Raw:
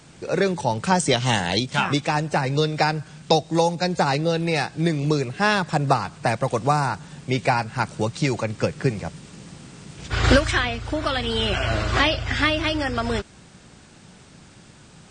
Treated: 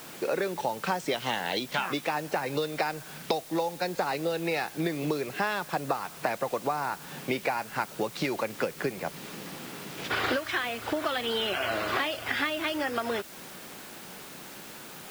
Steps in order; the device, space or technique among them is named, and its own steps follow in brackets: baby monitor (BPF 300–3900 Hz; compressor, threshold -33 dBFS, peak gain reduction 18.5 dB; white noise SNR 16 dB); gain +6 dB

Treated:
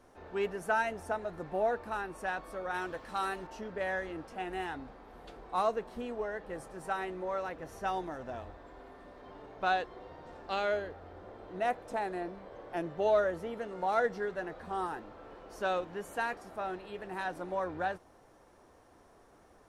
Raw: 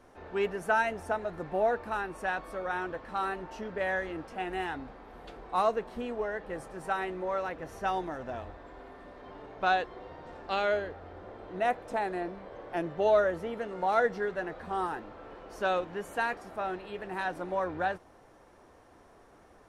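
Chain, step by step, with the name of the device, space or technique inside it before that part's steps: 2.74–3.47 high shelf 2800 Hz +9.5 dB; exciter from parts (in parallel at -7 dB: HPF 2900 Hz 6 dB/oct + soft clip -33.5 dBFS, distortion -13 dB + HPF 2200 Hz 12 dB/oct); on the sum: gain -3 dB

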